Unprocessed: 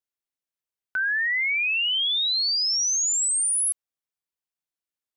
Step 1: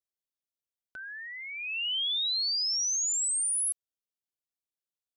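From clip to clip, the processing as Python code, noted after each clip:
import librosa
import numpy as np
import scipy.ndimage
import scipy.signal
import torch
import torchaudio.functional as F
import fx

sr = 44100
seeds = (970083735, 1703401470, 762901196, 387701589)

y = fx.band_shelf(x, sr, hz=1400.0, db=-11.5, octaves=1.7)
y = y * 10.0 ** (-5.5 / 20.0)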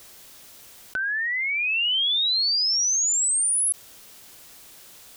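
y = fx.env_flatten(x, sr, amount_pct=70)
y = y * 10.0 ** (6.5 / 20.0)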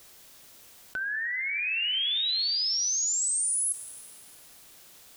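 y = fx.rev_plate(x, sr, seeds[0], rt60_s=3.5, hf_ratio=0.55, predelay_ms=0, drr_db=8.5)
y = y * 10.0 ** (-5.5 / 20.0)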